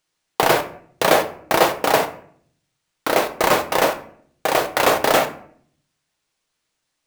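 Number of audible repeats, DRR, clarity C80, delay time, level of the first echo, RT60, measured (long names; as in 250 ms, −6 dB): no echo audible, 6.0 dB, 17.0 dB, no echo audible, no echo audible, 0.60 s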